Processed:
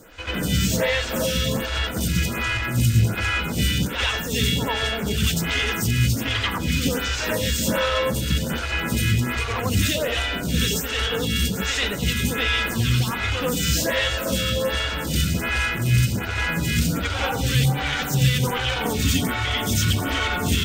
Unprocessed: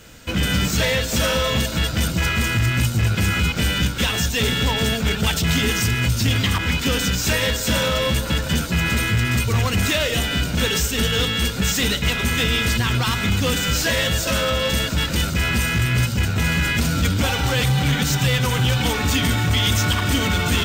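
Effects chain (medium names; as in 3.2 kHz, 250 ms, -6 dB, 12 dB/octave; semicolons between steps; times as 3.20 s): reverse echo 90 ms -5 dB; lamp-driven phase shifter 1.3 Hz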